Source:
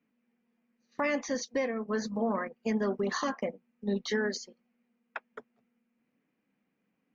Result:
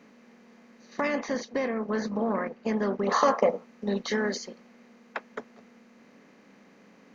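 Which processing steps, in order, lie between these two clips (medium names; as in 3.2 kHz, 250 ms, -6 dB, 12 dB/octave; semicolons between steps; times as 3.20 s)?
spectral levelling over time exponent 0.6; 1.08–3.12 s: low-pass 2.8 kHz 6 dB/octave; 3.08–3.64 s: time-frequency box 400–1400 Hz +9 dB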